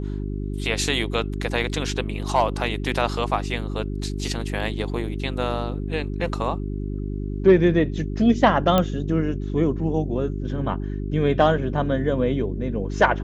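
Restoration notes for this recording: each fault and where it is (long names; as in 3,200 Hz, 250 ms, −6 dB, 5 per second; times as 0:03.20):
mains hum 50 Hz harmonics 8 −28 dBFS
0:08.78: click −7 dBFS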